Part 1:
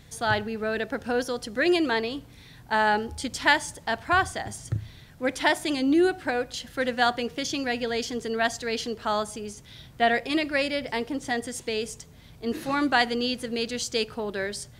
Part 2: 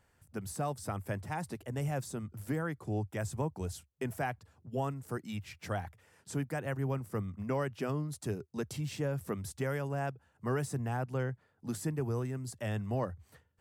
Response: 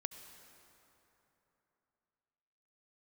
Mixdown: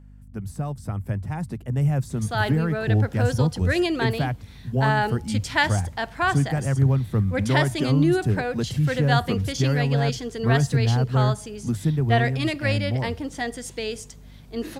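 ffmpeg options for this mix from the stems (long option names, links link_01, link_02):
-filter_complex "[0:a]adelay=2100,volume=-0.5dB[link_01];[1:a]bass=frequency=250:gain=12,treble=frequency=4000:gain=-3,dynaudnorm=framelen=150:gausssize=21:maxgain=5.5dB,volume=-0.5dB[link_02];[link_01][link_02]amix=inputs=2:normalize=0,aeval=exprs='val(0)+0.00562*(sin(2*PI*50*n/s)+sin(2*PI*2*50*n/s)/2+sin(2*PI*3*50*n/s)/3+sin(2*PI*4*50*n/s)/4+sin(2*PI*5*50*n/s)/5)':channel_layout=same"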